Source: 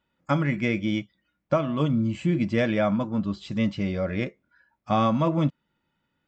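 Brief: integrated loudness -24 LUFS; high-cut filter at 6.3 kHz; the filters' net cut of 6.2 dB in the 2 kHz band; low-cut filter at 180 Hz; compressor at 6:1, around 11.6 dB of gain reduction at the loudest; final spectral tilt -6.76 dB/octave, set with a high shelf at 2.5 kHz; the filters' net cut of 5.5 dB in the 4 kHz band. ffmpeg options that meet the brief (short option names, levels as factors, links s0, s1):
-af "highpass=180,lowpass=6300,equalizer=f=2000:t=o:g=-7.5,highshelf=f=2500:g=5,equalizer=f=4000:t=o:g=-8,acompressor=threshold=0.0282:ratio=6,volume=3.98"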